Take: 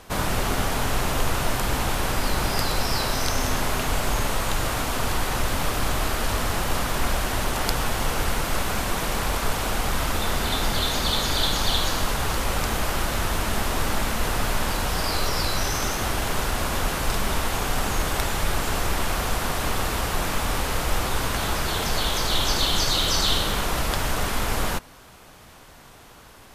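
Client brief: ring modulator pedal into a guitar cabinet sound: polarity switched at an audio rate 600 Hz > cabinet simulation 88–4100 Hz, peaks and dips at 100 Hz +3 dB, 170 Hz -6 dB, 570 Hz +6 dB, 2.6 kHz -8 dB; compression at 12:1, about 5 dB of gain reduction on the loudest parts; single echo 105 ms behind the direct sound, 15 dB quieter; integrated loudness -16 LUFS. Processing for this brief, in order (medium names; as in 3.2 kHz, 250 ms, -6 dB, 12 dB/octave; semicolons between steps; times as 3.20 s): compression 12:1, threshold -22 dBFS; delay 105 ms -15 dB; polarity switched at an audio rate 600 Hz; cabinet simulation 88–4100 Hz, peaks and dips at 100 Hz +3 dB, 170 Hz -6 dB, 570 Hz +6 dB, 2.6 kHz -8 dB; trim +8 dB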